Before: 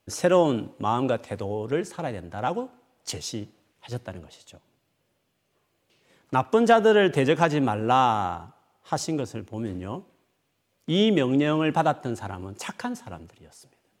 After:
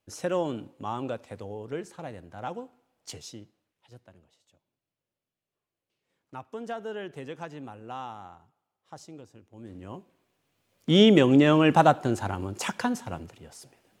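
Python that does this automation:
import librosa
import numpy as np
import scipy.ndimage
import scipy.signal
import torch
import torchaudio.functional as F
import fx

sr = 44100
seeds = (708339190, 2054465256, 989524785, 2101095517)

y = fx.gain(x, sr, db=fx.line((3.16, -8.5), (3.92, -18.0), (9.47, -18.0), (9.84, -8.0), (10.96, 3.5)))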